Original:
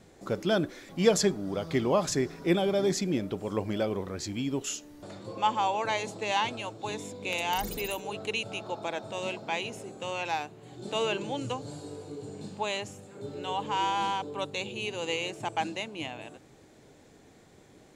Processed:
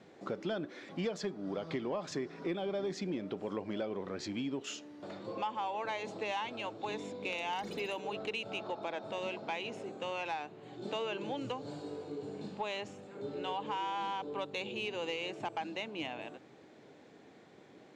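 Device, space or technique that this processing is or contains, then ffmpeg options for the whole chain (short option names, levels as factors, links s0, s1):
AM radio: -af "highpass=180,lowpass=3900,acompressor=threshold=0.0224:ratio=5,asoftclip=type=tanh:threshold=0.0596"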